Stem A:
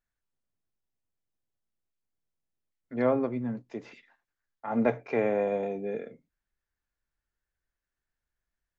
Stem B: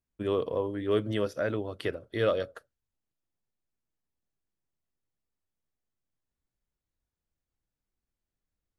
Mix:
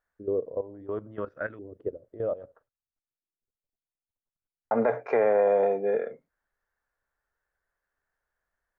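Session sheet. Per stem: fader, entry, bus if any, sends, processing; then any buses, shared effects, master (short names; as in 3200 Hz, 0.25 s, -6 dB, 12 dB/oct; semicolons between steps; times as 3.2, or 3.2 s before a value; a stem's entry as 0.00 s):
-3.0 dB, 0.00 s, muted 2.68–4.71, no send, band shelf 880 Hz +13 dB 2.5 oct
-4.0 dB, 0.00 s, no send, level quantiser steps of 14 dB; LFO low-pass saw up 0.63 Hz 340–1900 Hz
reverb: off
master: limiter -14 dBFS, peak gain reduction 9.5 dB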